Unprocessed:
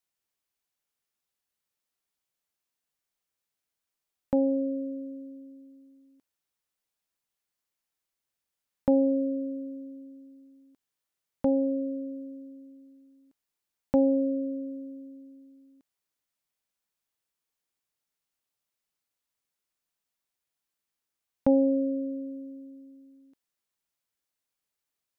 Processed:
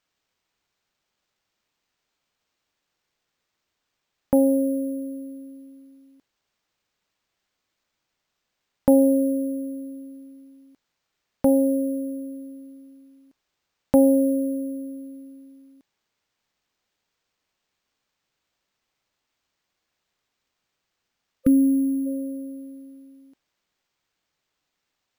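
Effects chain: spectral delete 21.45–22.07, 530–1200 Hz; careless resampling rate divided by 4×, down none, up hold; gain +6.5 dB

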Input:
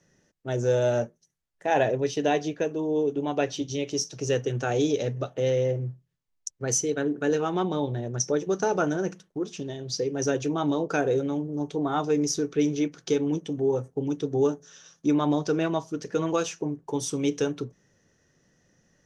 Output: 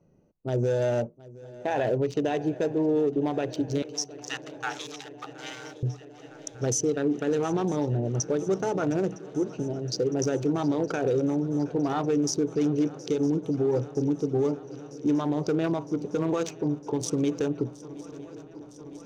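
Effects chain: Wiener smoothing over 25 samples; 3.82–5.83 Chebyshev high-pass 780 Hz, order 8; limiter -22.5 dBFS, peak gain reduction 11.5 dB; swung echo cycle 0.959 s, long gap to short 3:1, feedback 76%, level -20.5 dB; gain +4.5 dB

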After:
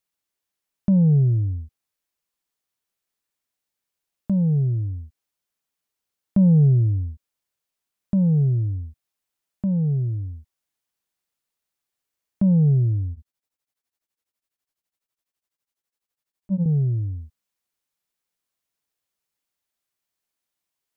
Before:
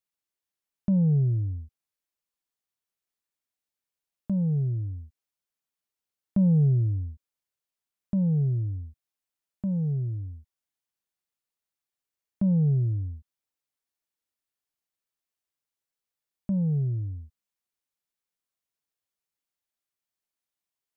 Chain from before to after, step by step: 13.12–16.66 beating tremolo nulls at 12 Hz; gain +5.5 dB

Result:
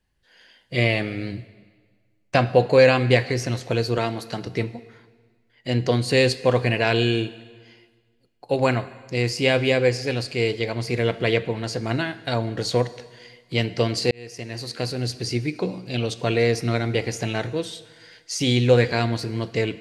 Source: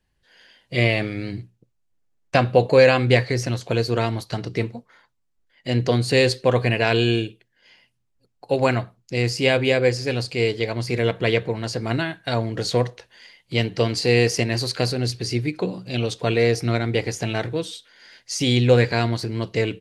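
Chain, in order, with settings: 3.98–4.47 HPF 150 Hz; plate-style reverb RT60 1.6 s, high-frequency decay 0.95×, DRR 14.5 dB; 14.11–15.27 fade in; gain -1 dB

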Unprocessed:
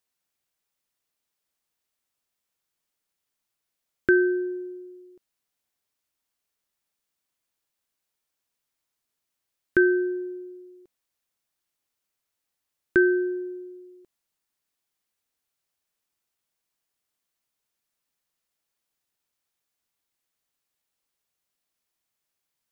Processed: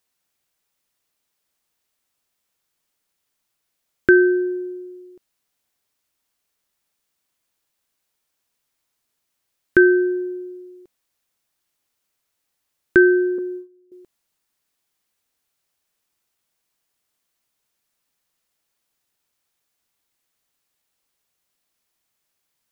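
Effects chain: 13.38–13.92 gate -38 dBFS, range -18 dB; gain +6.5 dB

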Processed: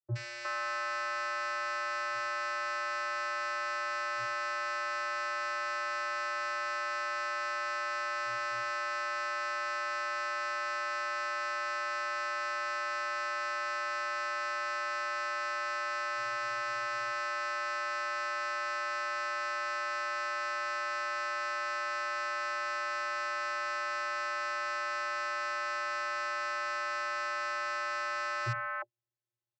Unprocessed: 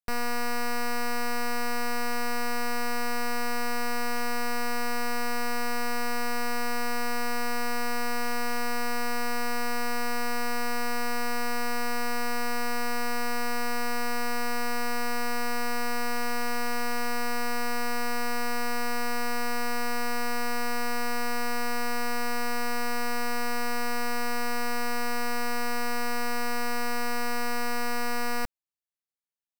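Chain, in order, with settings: three bands offset in time lows, highs, mids 70/360 ms, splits 530/2000 Hz; vocoder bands 32, square 118 Hz

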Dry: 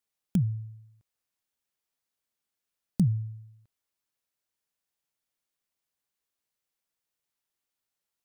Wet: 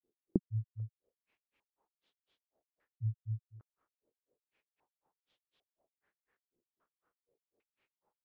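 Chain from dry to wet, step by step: bell 410 Hz +8.5 dB 1.6 oct; compressor, threshold -35 dBFS, peak gain reduction 17 dB; grains 0.146 s, grains 4/s; stepped low-pass 2.5 Hz 350–3400 Hz; gain +8.5 dB

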